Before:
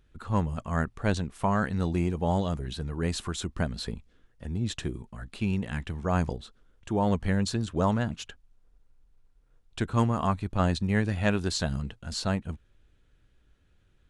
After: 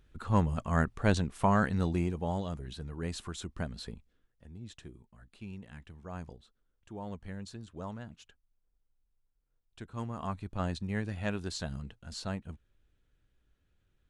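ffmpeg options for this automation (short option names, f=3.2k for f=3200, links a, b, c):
-af "volume=7.5dB,afade=t=out:st=1.56:d=0.77:silence=0.421697,afade=t=out:st=3.78:d=0.7:silence=0.375837,afade=t=in:st=9.92:d=0.48:silence=0.421697"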